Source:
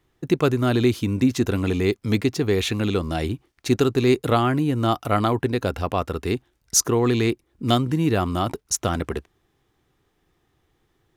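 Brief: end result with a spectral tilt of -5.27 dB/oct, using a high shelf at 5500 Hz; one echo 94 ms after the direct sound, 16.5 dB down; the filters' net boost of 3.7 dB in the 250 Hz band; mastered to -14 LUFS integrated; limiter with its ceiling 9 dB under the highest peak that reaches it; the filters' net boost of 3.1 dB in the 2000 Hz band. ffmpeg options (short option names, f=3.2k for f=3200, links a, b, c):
-af "equalizer=f=250:t=o:g=4.5,equalizer=f=2k:t=o:g=3,highshelf=f=5.5k:g=7,alimiter=limit=-10dB:level=0:latency=1,aecho=1:1:94:0.15,volume=8dB"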